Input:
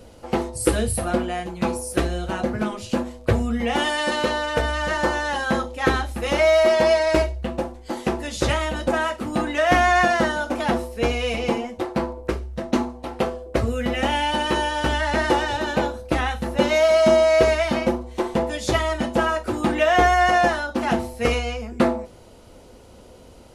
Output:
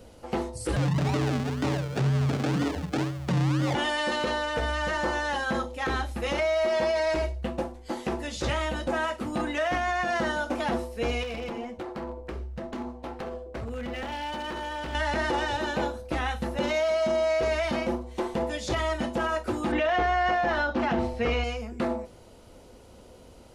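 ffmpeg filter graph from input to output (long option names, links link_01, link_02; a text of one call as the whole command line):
ffmpeg -i in.wav -filter_complex "[0:a]asettb=1/sr,asplit=3[link_01][link_02][link_03];[link_01]atrim=end=0.764[link_04];[link_02]atrim=start=0.76:end=3.75,asetpts=PTS-STARTPTS,afade=type=in:duration=0.004:curve=qsin,afade=type=out:start_time=2.986:duration=0.004:curve=qsin,aemphasis=mode=reproduction:type=bsi,acrusher=samples=39:mix=1:aa=0.000001:lfo=1:lforange=23.4:lforate=2,afreqshift=72[link_05];[link_03]atrim=start=3.746[link_06];[link_04][link_05]acrossfade=duration=0.004:curve1=hsin:curve2=qsin[link_07];[link_07][link_06]acrossfade=duration=0.004:curve1=qsin:curve2=hsin,asettb=1/sr,asplit=3[link_08][link_09][link_10];[link_08]atrim=end=11.234[link_11];[link_09]atrim=start=11.23:end=14.95,asetpts=PTS-STARTPTS,afade=type=in:duration=0.004:curve=qsin,afade=type=out:start_time=3.716:duration=0.004:curve=qsin,aemphasis=mode=reproduction:type=cd,acompressor=threshold=-26dB:ratio=4:attack=3.2:release=140:knee=1:detection=peak,aeval=exprs='0.0631*(abs(mod(val(0)/0.0631+3,4)-2)-1)':channel_layout=same[link_12];[link_10]atrim=start=14.946[link_13];[link_11][link_12]acrossfade=duration=0.004:curve1=hsin:curve2=qsin[link_14];[link_14][link_13]acrossfade=duration=0.004:curve1=qsin:curve2=hsin,asettb=1/sr,asplit=3[link_15][link_16][link_17];[link_15]atrim=end=19.724[link_18];[link_16]atrim=start=19.72:end=21.44,asetpts=PTS-STARTPTS,afade=type=in:duration=0.004:curve=qsin,afade=type=out:start_time=1.716:duration=0.004:curve=qsin,lowpass=3800,acontrast=70[link_19];[link_17]atrim=start=21.436[link_20];[link_18][link_19]acrossfade=duration=0.004:curve1=hsin:curve2=qsin[link_21];[link_21][link_20]acrossfade=duration=0.004:curve1=qsin:curve2=hsin,acrossover=split=7800[link_22][link_23];[link_23]acompressor=threshold=-52dB:ratio=4:attack=1:release=60[link_24];[link_22][link_24]amix=inputs=2:normalize=0,alimiter=limit=-14.5dB:level=0:latency=1:release=27,volume=-4dB" out.wav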